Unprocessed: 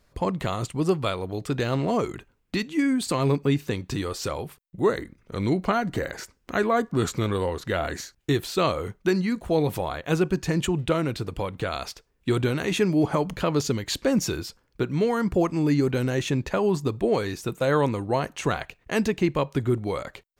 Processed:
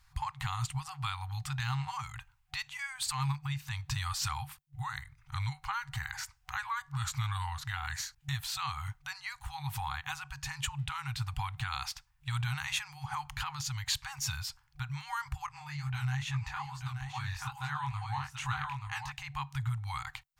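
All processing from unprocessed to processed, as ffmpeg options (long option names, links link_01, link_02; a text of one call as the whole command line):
ffmpeg -i in.wav -filter_complex "[0:a]asettb=1/sr,asplit=3[link_01][link_02][link_03];[link_01]atrim=end=15.464[link_04];[link_02]atrim=start=15.46:end=19.12,asetpts=PTS-STARTPTS,afade=type=in:duration=0.004:curve=qsin,afade=type=out:start_time=3.656:duration=0.004:curve=qsin,highshelf=frequency=4900:gain=-6.5,flanger=delay=16.5:depth=7.6:speed=2.3,aecho=1:1:881:0.447,atrim=end_sample=161406[link_05];[link_03]atrim=start=19.116[link_06];[link_04][link_05]acrossfade=duration=0.004:curve1=hsin:curve2=qsin[link_07];[link_07][link_06]acrossfade=duration=0.004:curve1=qsin:curve2=hsin,alimiter=limit=-20.5dB:level=0:latency=1:release=246,afftfilt=real='re*(1-between(b*sr/4096,140,750))':imag='im*(1-between(b*sr/4096,140,750))':win_size=4096:overlap=0.75" out.wav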